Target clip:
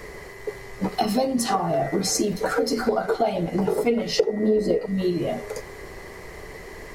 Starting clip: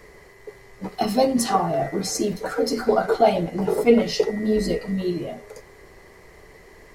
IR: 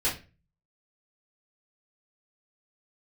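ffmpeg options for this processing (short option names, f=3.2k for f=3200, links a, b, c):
-filter_complex "[0:a]asettb=1/sr,asplit=3[a][b][c];[a]atrim=end=4.184[d];[b]atrim=start=4.18:end=4.86,asetpts=PTS-STARTPTS,afade=t=in:d=0.004:c=qsin,afade=t=out:st=0.676:d=0.004:c=qsin,equalizer=f=470:t=o:w=2.5:g=13[e];[c]atrim=start=4.856[f];[d][e]acrossfade=d=0.004:c1=hsin:c2=qsin[g];[g][f]acrossfade=d=0.004:c1=qsin:c2=hsin,acompressor=threshold=-29dB:ratio=5,volume=8.5dB"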